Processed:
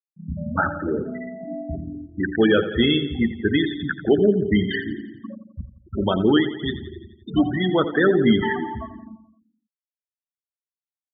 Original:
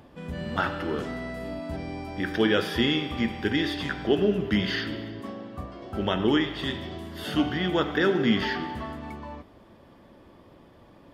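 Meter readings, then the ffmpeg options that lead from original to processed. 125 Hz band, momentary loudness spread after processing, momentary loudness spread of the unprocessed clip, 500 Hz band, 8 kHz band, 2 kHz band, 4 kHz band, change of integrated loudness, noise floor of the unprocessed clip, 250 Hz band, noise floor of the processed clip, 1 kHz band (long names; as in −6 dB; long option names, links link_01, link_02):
+5.0 dB, 17 LU, 14 LU, +6.0 dB, can't be measured, +3.0 dB, +1.5 dB, +5.5 dB, −54 dBFS, +5.5 dB, below −85 dBFS, +3.0 dB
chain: -af "acontrast=53,afftfilt=real='re*gte(hypot(re,im),0.2)':imag='im*gte(hypot(re,im),0.2)':win_size=1024:overlap=0.75,aecho=1:1:86|172|258|344|430|516:0.211|0.12|0.0687|0.0391|0.0223|0.0127"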